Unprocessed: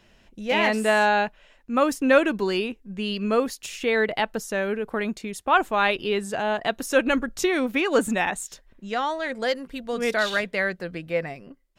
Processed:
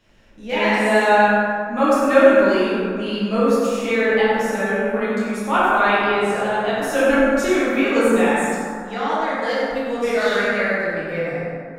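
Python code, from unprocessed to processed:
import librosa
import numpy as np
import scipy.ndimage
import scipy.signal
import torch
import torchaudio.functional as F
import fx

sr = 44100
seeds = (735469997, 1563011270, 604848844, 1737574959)

p1 = x + fx.echo_feedback(x, sr, ms=96, feedback_pct=40, wet_db=-7, dry=0)
p2 = fx.rev_plate(p1, sr, seeds[0], rt60_s=2.4, hf_ratio=0.3, predelay_ms=0, drr_db=-9.5)
y = p2 * 10.0 ** (-6.0 / 20.0)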